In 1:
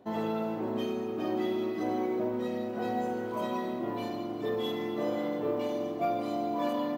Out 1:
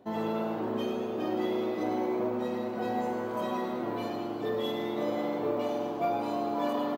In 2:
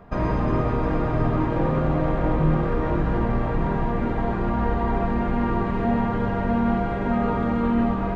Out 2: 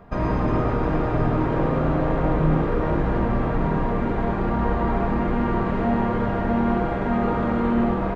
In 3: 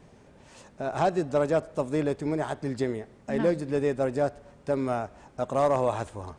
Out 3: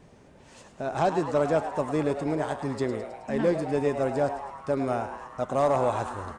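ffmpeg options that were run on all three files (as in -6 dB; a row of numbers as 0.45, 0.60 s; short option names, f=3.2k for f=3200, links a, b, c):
-filter_complex "[0:a]asplit=9[a][b][c][d][e][f][g][h][i];[b]adelay=106,afreqshift=130,volume=-10.5dB[j];[c]adelay=212,afreqshift=260,volume=-14.5dB[k];[d]adelay=318,afreqshift=390,volume=-18.5dB[l];[e]adelay=424,afreqshift=520,volume=-22.5dB[m];[f]adelay=530,afreqshift=650,volume=-26.6dB[n];[g]adelay=636,afreqshift=780,volume=-30.6dB[o];[h]adelay=742,afreqshift=910,volume=-34.6dB[p];[i]adelay=848,afreqshift=1040,volume=-38.6dB[q];[a][j][k][l][m][n][o][p][q]amix=inputs=9:normalize=0"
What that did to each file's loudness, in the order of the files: +0.5, +0.5, +0.5 LU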